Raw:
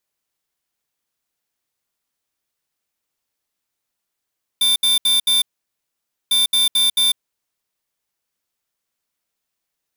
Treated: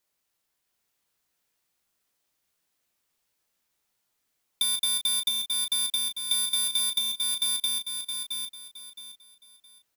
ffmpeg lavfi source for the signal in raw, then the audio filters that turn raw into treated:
-f lavfi -i "aevalsrc='0.168*(2*lt(mod(3570*t,1),0.5)-1)*clip(min(mod(mod(t,1.7),0.22),0.15-mod(mod(t,1.7),0.22))/0.005,0,1)*lt(mod(t,1.7),0.88)':d=3.4:s=44100"
-filter_complex "[0:a]asplit=2[a][b];[b]aecho=0:1:667|1334|2001|2668:0.631|0.177|0.0495|0.0139[c];[a][c]amix=inputs=2:normalize=0,acompressor=threshold=-25dB:ratio=8,asplit=2[d][e];[e]aecho=0:1:17|34:0.316|0.376[f];[d][f]amix=inputs=2:normalize=0"

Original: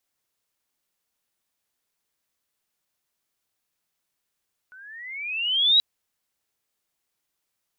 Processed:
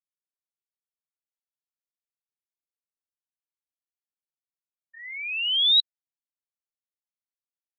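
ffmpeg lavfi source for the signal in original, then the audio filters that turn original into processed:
-f lavfi -i "aevalsrc='pow(10,(-13+31*(t/1.08-1))/20)*sin(2*PI*1470*1.08/(17*log(2)/12)*(exp(17*log(2)/12*t/1.08)-1))':d=1.08:s=44100"
-af "afftfilt=real='re*gte(hypot(re,im),0.126)':imag='im*gte(hypot(re,im),0.126)':win_size=1024:overlap=0.75"

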